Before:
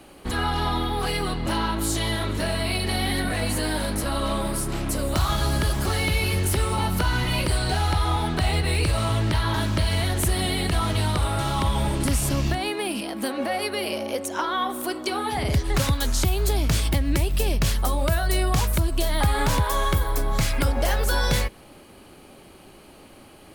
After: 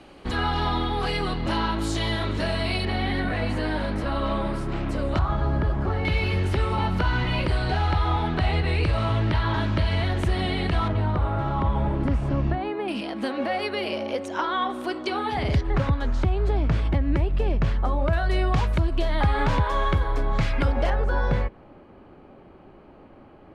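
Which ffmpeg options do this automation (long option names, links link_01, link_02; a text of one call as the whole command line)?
ffmpeg -i in.wav -af "asetnsamples=nb_out_samples=441:pad=0,asendcmd='2.85 lowpass f 2700;5.19 lowpass f 1300;6.05 lowpass f 3000;10.88 lowpass f 1400;12.88 lowpass f 3800;15.61 lowpass f 1700;18.13 lowpass f 2800;20.9 lowpass f 1400',lowpass=4900" out.wav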